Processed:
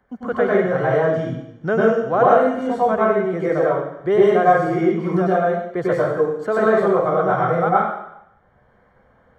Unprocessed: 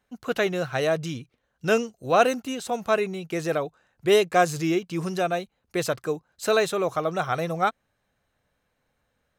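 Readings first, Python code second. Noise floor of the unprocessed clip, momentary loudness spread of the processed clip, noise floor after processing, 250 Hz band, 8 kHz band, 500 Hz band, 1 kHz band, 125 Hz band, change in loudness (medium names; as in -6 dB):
-75 dBFS, 8 LU, -57 dBFS, +7.5 dB, under -15 dB, +8.0 dB, +8.0 dB, +7.0 dB, +7.0 dB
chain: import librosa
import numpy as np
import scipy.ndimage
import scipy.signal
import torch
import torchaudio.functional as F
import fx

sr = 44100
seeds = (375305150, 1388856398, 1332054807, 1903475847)

y = scipy.signal.savgol_filter(x, 41, 4, mode='constant')
y = fx.rev_plate(y, sr, seeds[0], rt60_s=0.69, hf_ratio=1.0, predelay_ms=85, drr_db=-8.0)
y = fx.band_squash(y, sr, depth_pct=40)
y = F.gain(torch.from_numpy(y), -1.0).numpy()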